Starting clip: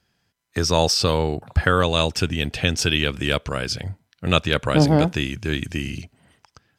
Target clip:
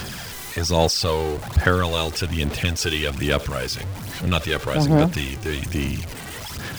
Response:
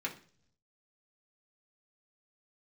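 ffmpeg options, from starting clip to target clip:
-af "aeval=exprs='val(0)+0.5*0.0668*sgn(val(0))':c=same,aphaser=in_gain=1:out_gain=1:delay=2.6:decay=0.45:speed=1.2:type=sinusoidal,volume=-5dB"

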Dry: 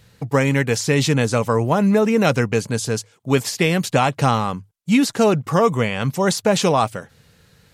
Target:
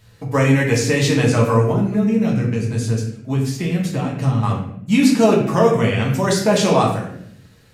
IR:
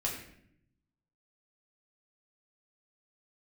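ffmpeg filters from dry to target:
-filter_complex "[0:a]asettb=1/sr,asplit=3[a][b][c];[a]atrim=end=1.714[d];[b]atrim=start=1.71:end=4.43,asetpts=PTS-STARTPTS,afade=t=in:d=0.004:c=qsin,afade=t=out:st=2.716:d=0.004:c=qsin,acrossover=split=260[e][f];[f]acompressor=threshold=-29dB:ratio=5[g];[e][g]amix=inputs=2:normalize=0[h];[c]atrim=start=4.426[i];[d][h]acrossfade=d=0.004:c1=hsin:c2=qsin[j];[j][i]acrossfade=d=0.004:c1=qsin:c2=hsin[k];[1:a]atrim=start_sample=2205[l];[k][l]afir=irnorm=-1:irlink=0,volume=-2.5dB"

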